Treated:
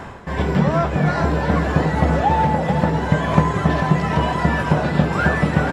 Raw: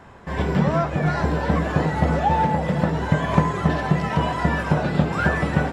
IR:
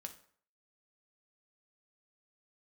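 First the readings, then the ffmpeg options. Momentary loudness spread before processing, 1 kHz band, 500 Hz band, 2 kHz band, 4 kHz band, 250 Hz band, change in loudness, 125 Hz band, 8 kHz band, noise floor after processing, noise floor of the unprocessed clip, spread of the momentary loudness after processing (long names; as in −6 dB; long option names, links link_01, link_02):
3 LU, +3.0 dB, +3.0 dB, +3.0 dB, +3.0 dB, +3.0 dB, +3.0 dB, +3.0 dB, can't be measured, −27 dBFS, −31 dBFS, 2 LU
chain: -af "areverse,acompressor=mode=upward:threshold=-21dB:ratio=2.5,areverse,aecho=1:1:442:0.355,volume=2.5dB"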